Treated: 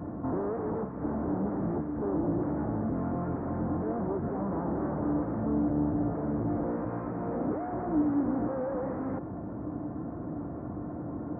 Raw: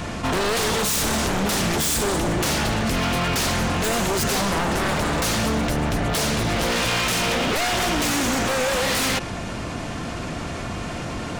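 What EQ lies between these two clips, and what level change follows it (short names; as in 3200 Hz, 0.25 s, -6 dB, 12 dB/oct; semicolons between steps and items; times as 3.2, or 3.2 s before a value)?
Gaussian blur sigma 8.7 samples; HPF 83 Hz 12 dB/oct; bell 300 Hz +11.5 dB 0.2 oct; -7.0 dB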